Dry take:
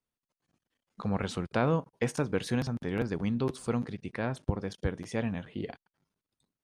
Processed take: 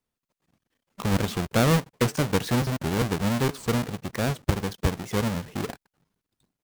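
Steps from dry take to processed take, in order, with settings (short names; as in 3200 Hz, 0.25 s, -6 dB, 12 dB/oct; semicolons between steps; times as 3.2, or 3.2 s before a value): half-waves squared off; record warp 78 rpm, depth 160 cents; gain +2 dB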